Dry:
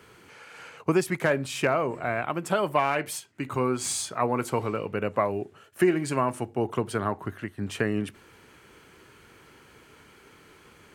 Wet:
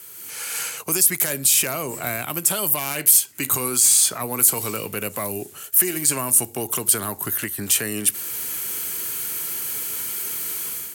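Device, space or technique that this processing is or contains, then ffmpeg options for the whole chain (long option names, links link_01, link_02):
FM broadcast chain: -filter_complex "[0:a]highpass=79,dynaudnorm=framelen=140:gausssize=5:maxgain=13.5dB,acrossover=split=310|3600[link_01][link_02][link_03];[link_01]acompressor=threshold=-27dB:ratio=4[link_04];[link_02]acompressor=threshold=-25dB:ratio=4[link_05];[link_03]acompressor=threshold=-33dB:ratio=4[link_06];[link_04][link_05][link_06]amix=inputs=3:normalize=0,aemphasis=mode=production:type=75fm,alimiter=limit=-14.5dB:level=0:latency=1:release=11,asoftclip=type=hard:threshold=-16dB,lowpass=frequency=15000:width=0.5412,lowpass=frequency=15000:width=1.3066,aemphasis=mode=production:type=75fm,volume=-3dB"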